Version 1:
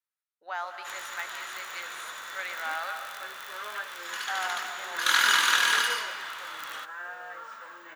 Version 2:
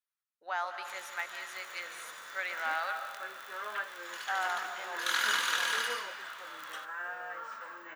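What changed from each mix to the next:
first sound −8.0 dB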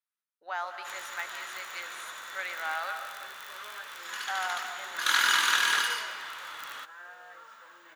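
first sound +6.0 dB
second sound −8.0 dB

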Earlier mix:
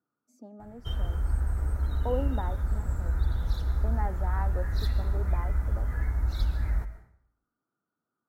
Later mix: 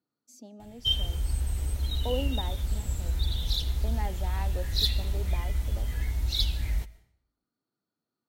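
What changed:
background: send −9.0 dB
master: add high shelf with overshoot 2,100 Hz +13.5 dB, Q 3

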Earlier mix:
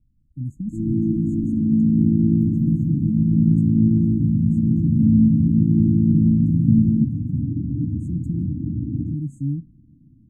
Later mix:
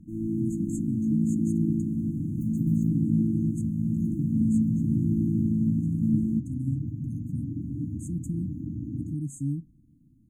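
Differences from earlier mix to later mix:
speech +3.5 dB
first sound: entry −0.65 s
master: add tilt shelving filter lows −10 dB, about 700 Hz

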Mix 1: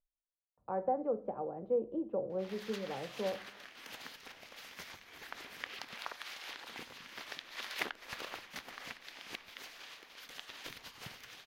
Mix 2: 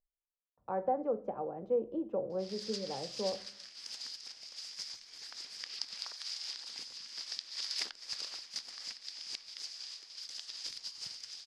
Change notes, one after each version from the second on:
background: add transistor ladder low-pass 5,200 Hz, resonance 80%
master: remove high-frequency loss of the air 290 metres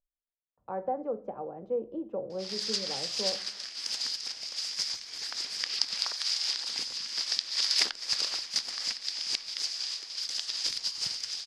background +11.0 dB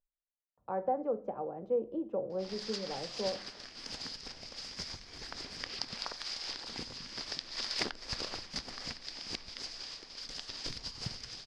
background: add spectral tilt −4.5 dB per octave

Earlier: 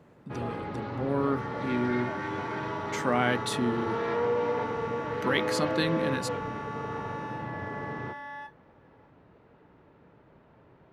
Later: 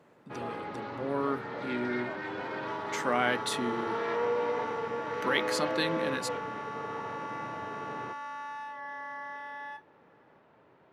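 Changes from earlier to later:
second sound: entry +1.30 s
master: add high-pass filter 400 Hz 6 dB per octave

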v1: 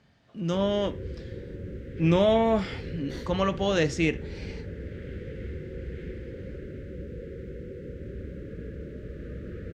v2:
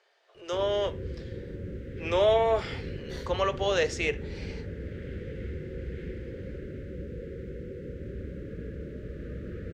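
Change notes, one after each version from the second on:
speech: add Butterworth high-pass 370 Hz 72 dB per octave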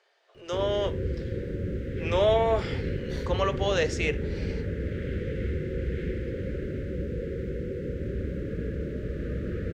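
background +6.5 dB

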